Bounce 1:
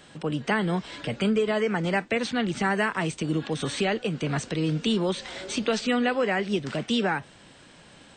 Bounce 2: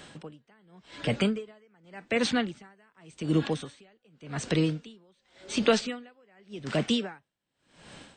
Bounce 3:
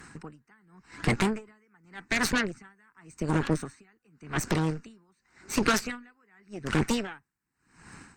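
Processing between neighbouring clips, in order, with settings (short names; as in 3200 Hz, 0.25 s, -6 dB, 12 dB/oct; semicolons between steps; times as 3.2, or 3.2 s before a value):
dB-linear tremolo 0.88 Hz, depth 40 dB; gain +3.5 dB
fixed phaser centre 1400 Hz, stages 4; added harmonics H 8 -14 dB, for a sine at -16 dBFS; harmonic-percussive split percussive +6 dB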